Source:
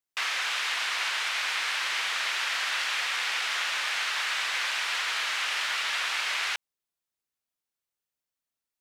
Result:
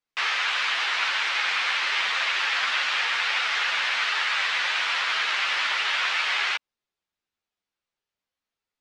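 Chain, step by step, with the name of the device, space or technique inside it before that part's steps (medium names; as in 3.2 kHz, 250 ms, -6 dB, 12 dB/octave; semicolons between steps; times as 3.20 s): string-machine ensemble chorus (three-phase chorus; low-pass 4.4 kHz 12 dB/octave); trim +8 dB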